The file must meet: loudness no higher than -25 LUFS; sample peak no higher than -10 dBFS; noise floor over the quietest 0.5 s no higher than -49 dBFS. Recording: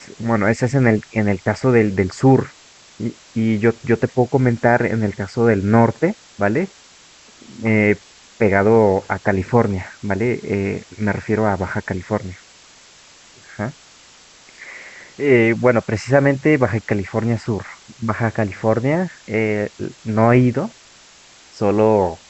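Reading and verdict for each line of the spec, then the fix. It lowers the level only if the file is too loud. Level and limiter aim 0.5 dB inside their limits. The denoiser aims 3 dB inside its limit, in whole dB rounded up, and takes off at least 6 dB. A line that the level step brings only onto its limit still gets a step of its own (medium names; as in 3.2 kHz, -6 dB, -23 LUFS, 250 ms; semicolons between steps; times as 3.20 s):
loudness -18.5 LUFS: fail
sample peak -3.0 dBFS: fail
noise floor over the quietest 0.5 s -47 dBFS: fail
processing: trim -7 dB; peak limiter -10.5 dBFS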